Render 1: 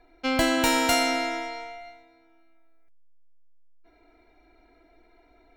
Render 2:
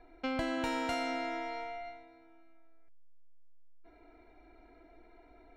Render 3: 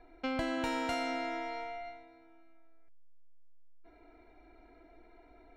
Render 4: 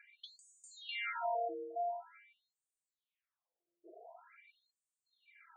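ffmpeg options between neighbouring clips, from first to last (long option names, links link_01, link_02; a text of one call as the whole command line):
ffmpeg -i in.wav -af "aemphasis=mode=reproduction:type=75fm,acompressor=threshold=-37dB:ratio=2.5" out.wav
ffmpeg -i in.wav -af anull out.wav
ffmpeg -i in.wav -af "asuperstop=centerf=5300:order=4:qfactor=1.7,acompressor=threshold=-38dB:ratio=6,afftfilt=real='re*between(b*sr/1024,440*pow(7100/440,0.5+0.5*sin(2*PI*0.46*pts/sr))/1.41,440*pow(7100/440,0.5+0.5*sin(2*PI*0.46*pts/sr))*1.41)':imag='im*between(b*sr/1024,440*pow(7100/440,0.5+0.5*sin(2*PI*0.46*pts/sr))/1.41,440*pow(7100/440,0.5+0.5*sin(2*PI*0.46*pts/sr))*1.41)':win_size=1024:overlap=0.75,volume=9.5dB" out.wav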